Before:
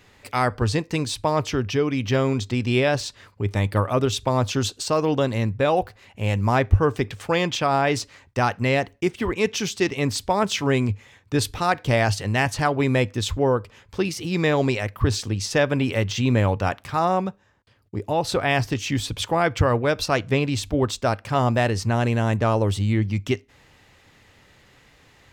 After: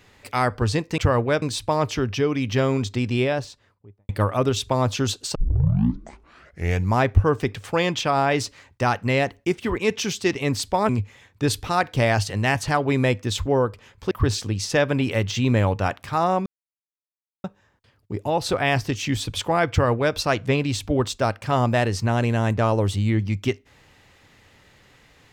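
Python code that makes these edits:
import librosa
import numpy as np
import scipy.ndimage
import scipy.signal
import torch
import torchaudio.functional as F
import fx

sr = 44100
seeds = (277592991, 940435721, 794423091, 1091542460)

y = fx.studio_fade_out(x, sr, start_s=2.5, length_s=1.15)
y = fx.edit(y, sr, fx.tape_start(start_s=4.91, length_s=1.6),
    fx.cut(start_s=10.45, length_s=0.35),
    fx.cut(start_s=14.02, length_s=0.9),
    fx.insert_silence(at_s=17.27, length_s=0.98),
    fx.duplicate(start_s=19.54, length_s=0.44, to_s=0.98), tone=tone)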